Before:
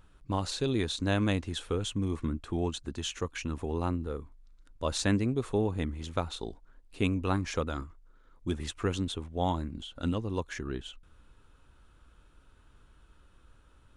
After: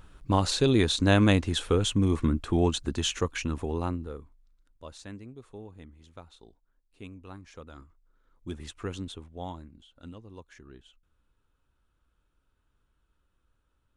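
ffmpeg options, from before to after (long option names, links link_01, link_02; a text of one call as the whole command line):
ffmpeg -i in.wav -af "volume=18dB,afade=type=out:start_time=2.98:duration=1.15:silence=0.298538,afade=type=out:start_time=4.13:duration=0.84:silence=0.237137,afade=type=in:start_time=7.53:duration=1.03:silence=0.281838,afade=type=out:start_time=9.06:duration=0.72:silence=0.354813" out.wav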